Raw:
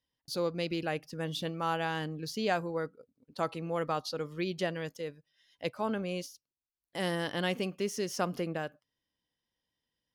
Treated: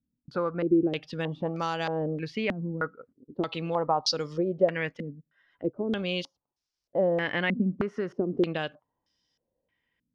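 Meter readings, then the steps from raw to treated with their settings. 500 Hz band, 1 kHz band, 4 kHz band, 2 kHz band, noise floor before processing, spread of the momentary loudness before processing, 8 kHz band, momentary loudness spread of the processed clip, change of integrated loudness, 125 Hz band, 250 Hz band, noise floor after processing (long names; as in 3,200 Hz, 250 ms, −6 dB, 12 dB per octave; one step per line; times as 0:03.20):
+5.5 dB, +2.5 dB, +3.5 dB, +4.5 dB, below −85 dBFS, 8 LU, −1.0 dB, 9 LU, +5.5 dB, +4.5 dB, +7.0 dB, below −85 dBFS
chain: downward compressor 5 to 1, threshold −32 dBFS, peak gain reduction 7.5 dB
low-pass on a step sequencer 3.2 Hz 230–5,400 Hz
level +5.5 dB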